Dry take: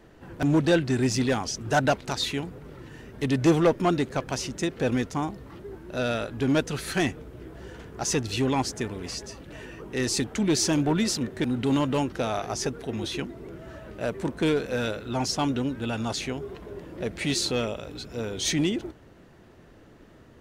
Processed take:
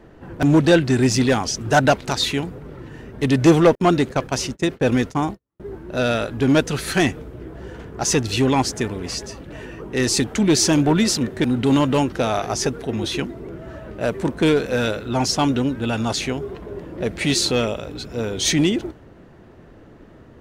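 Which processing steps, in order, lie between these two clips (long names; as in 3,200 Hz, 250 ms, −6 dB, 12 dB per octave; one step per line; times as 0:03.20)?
0:03.75–0:05.60: noise gate −33 dBFS, range −48 dB
one half of a high-frequency compander decoder only
level +7 dB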